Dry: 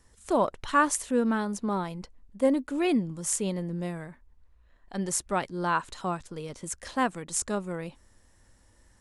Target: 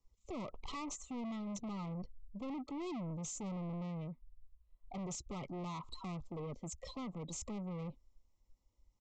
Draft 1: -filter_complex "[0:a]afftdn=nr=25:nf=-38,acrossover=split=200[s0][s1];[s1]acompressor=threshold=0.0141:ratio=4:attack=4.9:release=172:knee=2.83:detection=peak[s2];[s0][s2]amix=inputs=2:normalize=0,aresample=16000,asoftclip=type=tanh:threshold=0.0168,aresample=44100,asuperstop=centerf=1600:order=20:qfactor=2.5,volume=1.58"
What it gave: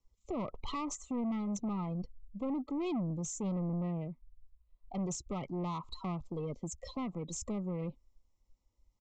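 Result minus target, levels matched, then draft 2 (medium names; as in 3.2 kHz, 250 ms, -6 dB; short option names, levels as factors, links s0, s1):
saturation: distortion -5 dB
-filter_complex "[0:a]afftdn=nr=25:nf=-38,acrossover=split=200[s0][s1];[s1]acompressor=threshold=0.0141:ratio=4:attack=4.9:release=172:knee=2.83:detection=peak[s2];[s0][s2]amix=inputs=2:normalize=0,aresample=16000,asoftclip=type=tanh:threshold=0.00631,aresample=44100,asuperstop=centerf=1600:order=20:qfactor=2.5,volume=1.58"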